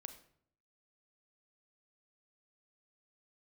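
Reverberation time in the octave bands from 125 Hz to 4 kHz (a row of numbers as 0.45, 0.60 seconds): 0.85, 0.80, 0.65, 0.60, 0.50, 0.45 seconds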